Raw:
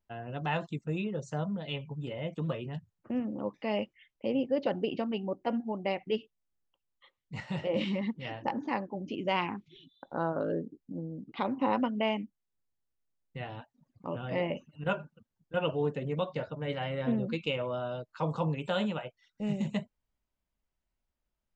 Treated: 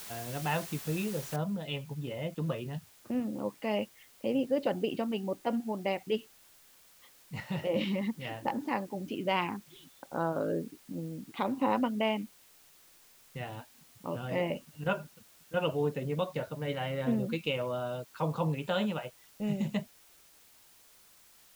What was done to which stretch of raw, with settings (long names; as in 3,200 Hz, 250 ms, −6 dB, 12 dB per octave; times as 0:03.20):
0:01.36: noise floor change −45 dB −60 dB